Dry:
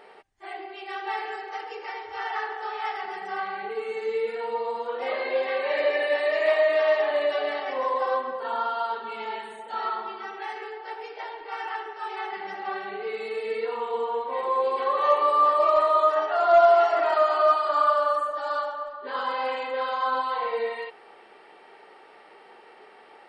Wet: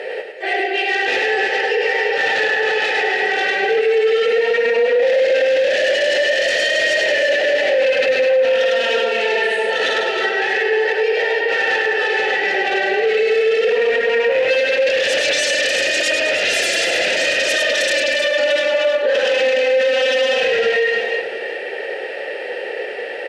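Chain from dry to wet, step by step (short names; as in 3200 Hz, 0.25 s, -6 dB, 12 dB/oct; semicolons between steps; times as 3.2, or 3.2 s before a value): sine folder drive 19 dB, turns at -8.5 dBFS; 2.79–5.34 HPF 120 Hz 24 dB/oct; sample leveller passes 1; vowel filter e; tone controls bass +1 dB, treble +12 dB; tapped delay 69/103/314/337/697 ms -18.5/-4/-8.5/-17/-17.5 dB; limiter -15.5 dBFS, peak gain reduction 13.5 dB; gain +6.5 dB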